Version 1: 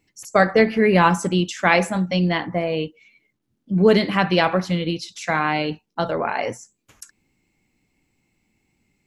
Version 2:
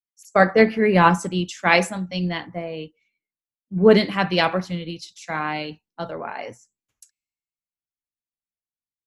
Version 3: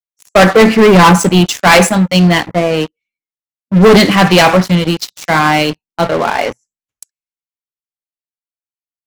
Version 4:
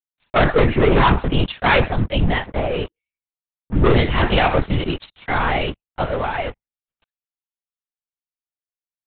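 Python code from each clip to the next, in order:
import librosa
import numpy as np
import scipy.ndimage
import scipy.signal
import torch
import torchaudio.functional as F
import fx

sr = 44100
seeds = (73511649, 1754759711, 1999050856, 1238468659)

y1 = fx.band_widen(x, sr, depth_pct=100)
y1 = y1 * librosa.db_to_amplitude(-3.0)
y2 = fx.leveller(y1, sr, passes=5)
y3 = fx.lpc_vocoder(y2, sr, seeds[0], excitation='whisper', order=10)
y3 = y3 * librosa.db_to_amplitude(-8.5)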